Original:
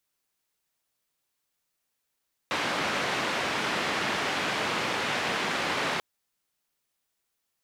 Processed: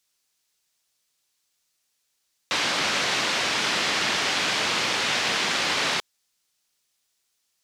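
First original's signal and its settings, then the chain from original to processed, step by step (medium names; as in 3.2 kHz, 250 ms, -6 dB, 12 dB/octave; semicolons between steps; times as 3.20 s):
noise band 150–2400 Hz, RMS -29 dBFS 3.49 s
peaking EQ 5.5 kHz +10.5 dB 2.3 oct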